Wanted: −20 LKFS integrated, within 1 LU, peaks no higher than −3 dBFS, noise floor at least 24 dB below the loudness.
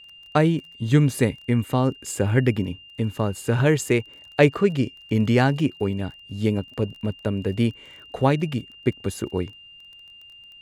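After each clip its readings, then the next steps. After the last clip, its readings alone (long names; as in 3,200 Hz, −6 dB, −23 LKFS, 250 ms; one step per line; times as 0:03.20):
crackle rate 25 per second; interfering tone 2,800 Hz; level of the tone −44 dBFS; integrated loudness −23.5 LKFS; sample peak −2.5 dBFS; target loudness −20.0 LKFS
→ click removal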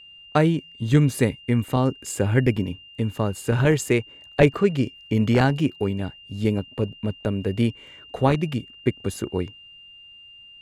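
crackle rate 1.2 per second; interfering tone 2,800 Hz; level of the tone −44 dBFS
→ notch filter 2,800 Hz, Q 30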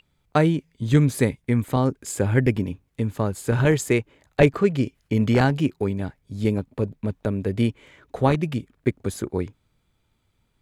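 interfering tone none found; integrated loudness −23.5 LKFS; sample peak −2.5 dBFS; target loudness −20.0 LKFS
→ level +3.5 dB
brickwall limiter −3 dBFS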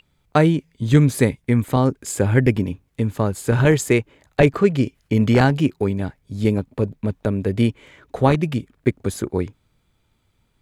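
integrated loudness −20.0 LKFS; sample peak −3.0 dBFS; background noise floor −66 dBFS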